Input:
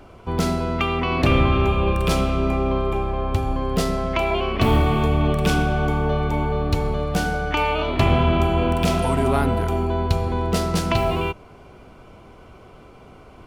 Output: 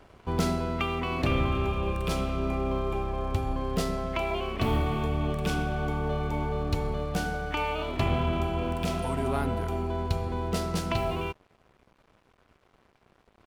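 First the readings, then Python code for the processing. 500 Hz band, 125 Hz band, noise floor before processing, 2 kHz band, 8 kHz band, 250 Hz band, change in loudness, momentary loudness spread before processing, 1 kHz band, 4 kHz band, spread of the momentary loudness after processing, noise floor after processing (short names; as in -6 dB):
-8.5 dB, -8.5 dB, -46 dBFS, -8.5 dB, -7.5 dB, -8.0 dB, -8.5 dB, 5 LU, -8.5 dB, -8.0 dB, 4 LU, -66 dBFS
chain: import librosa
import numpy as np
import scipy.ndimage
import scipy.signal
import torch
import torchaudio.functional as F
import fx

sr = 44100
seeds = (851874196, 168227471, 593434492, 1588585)

y = fx.rider(x, sr, range_db=10, speed_s=2.0)
y = np.sign(y) * np.maximum(np.abs(y) - 10.0 ** (-43.5 / 20.0), 0.0)
y = F.gain(torch.from_numpy(y), -8.0).numpy()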